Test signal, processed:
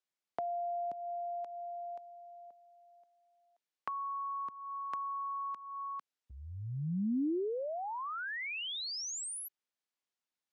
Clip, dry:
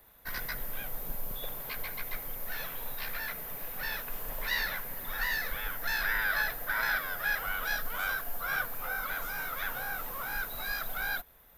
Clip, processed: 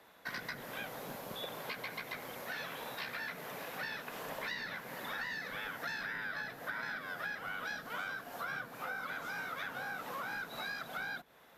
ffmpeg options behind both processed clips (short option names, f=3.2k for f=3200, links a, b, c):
-filter_complex "[0:a]highpass=190,lowpass=6.6k,acrossover=split=320[a][b];[b]acompressor=threshold=-42dB:ratio=10[c];[a][c]amix=inputs=2:normalize=0,volume=4dB"